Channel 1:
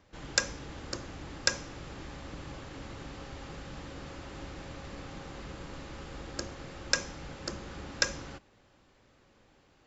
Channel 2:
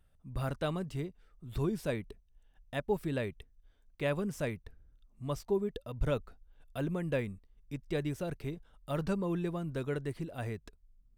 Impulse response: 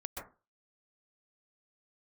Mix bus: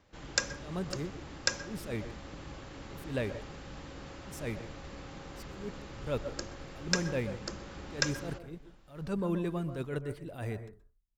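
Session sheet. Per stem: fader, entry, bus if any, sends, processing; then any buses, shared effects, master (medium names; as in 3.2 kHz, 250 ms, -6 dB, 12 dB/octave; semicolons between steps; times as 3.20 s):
-3.5 dB, 0.00 s, send -12.5 dB, none
-0.5 dB, 0.00 s, send -7 dB, gate with hold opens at -52 dBFS; attacks held to a fixed rise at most 140 dB/s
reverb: on, RT60 0.30 s, pre-delay 117 ms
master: none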